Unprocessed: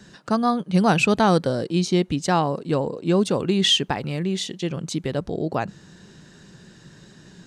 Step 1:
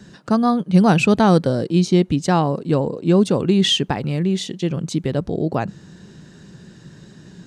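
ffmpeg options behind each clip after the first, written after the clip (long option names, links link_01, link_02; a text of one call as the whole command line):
ffmpeg -i in.wav -af "equalizer=frequency=140:width=0.31:gain=6" out.wav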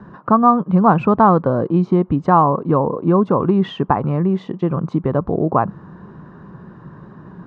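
ffmpeg -i in.wav -af "acompressor=threshold=-18dB:ratio=2,lowpass=frequency=1100:width_type=q:width=4.9,volume=3.5dB" out.wav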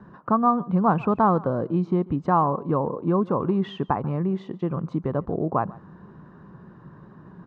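ffmpeg -i in.wav -af "aecho=1:1:141:0.0794,volume=-7.5dB" out.wav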